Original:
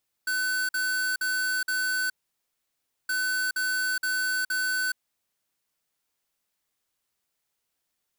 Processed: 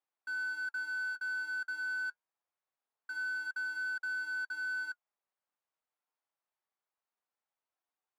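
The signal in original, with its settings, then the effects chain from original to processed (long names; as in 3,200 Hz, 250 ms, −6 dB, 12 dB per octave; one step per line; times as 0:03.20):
beeps in groups square 1,510 Hz, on 0.42 s, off 0.05 s, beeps 4, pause 0.99 s, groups 2, −27 dBFS
flanger 0.25 Hz, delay 2.4 ms, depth 4.4 ms, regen −58%
resonant band-pass 880 Hz, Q 1.2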